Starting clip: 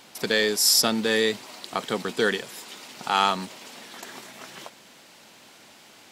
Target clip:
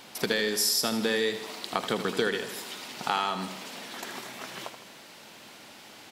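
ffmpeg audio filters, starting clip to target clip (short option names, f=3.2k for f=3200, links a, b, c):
-filter_complex "[0:a]equalizer=f=7.4k:t=o:w=0.77:g=-3,acompressor=threshold=-25dB:ratio=10,asplit=2[a][b];[b]aecho=0:1:79|158|237|316|395|474:0.316|0.168|0.0888|0.0471|0.025|0.0132[c];[a][c]amix=inputs=2:normalize=0,volume=2dB"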